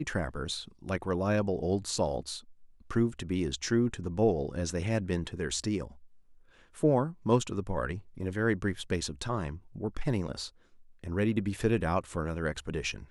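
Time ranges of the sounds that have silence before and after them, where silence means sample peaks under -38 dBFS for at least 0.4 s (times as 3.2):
2.91–5.87
6.78–10.47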